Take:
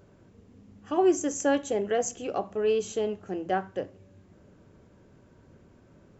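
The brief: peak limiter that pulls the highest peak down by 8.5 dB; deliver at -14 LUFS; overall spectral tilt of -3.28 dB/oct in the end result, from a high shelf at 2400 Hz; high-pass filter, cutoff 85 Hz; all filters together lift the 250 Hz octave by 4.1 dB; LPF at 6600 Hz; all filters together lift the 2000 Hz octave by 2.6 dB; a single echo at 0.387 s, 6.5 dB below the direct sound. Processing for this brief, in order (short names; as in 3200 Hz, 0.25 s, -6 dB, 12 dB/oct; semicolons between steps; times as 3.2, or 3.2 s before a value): HPF 85 Hz; LPF 6600 Hz; bell 250 Hz +6 dB; bell 2000 Hz +5.5 dB; high shelf 2400 Hz -5 dB; limiter -19 dBFS; echo 0.387 s -6.5 dB; gain +15 dB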